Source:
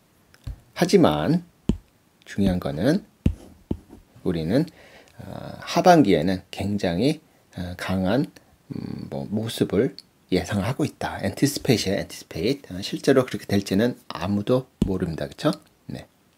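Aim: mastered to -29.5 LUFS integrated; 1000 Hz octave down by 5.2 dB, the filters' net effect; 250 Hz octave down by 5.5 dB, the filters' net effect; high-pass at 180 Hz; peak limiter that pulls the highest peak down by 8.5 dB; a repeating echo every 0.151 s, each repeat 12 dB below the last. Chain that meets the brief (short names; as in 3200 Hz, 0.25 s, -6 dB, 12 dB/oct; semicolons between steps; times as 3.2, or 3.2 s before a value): HPF 180 Hz; bell 250 Hz -5 dB; bell 1000 Hz -8.5 dB; limiter -13.5 dBFS; feedback echo 0.151 s, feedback 25%, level -12 dB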